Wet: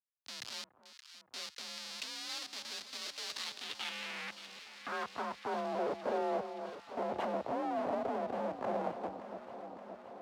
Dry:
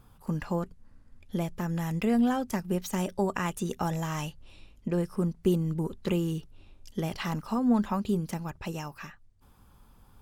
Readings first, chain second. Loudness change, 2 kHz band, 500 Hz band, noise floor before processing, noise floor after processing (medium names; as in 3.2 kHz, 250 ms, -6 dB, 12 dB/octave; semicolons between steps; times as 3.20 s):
-8.5 dB, -3.0 dB, -4.0 dB, -58 dBFS, -66 dBFS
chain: local Wiener filter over 25 samples; high-pass 160 Hz 12 dB/octave; band-stop 600 Hz, Q 12; in parallel at +1 dB: peak limiter -25 dBFS, peak gain reduction 11 dB; on the sum: LFO low-pass square 0.62 Hz 540–3600 Hz; Schmitt trigger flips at -38.5 dBFS; band-pass sweep 4.5 kHz -> 640 Hz, 3.36–5.74 s; on a send: echo whose repeats swap between lows and highs 286 ms, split 1.1 kHz, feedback 85%, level -10 dB; on the sum: frequency shift +41 Hz; trim +1 dB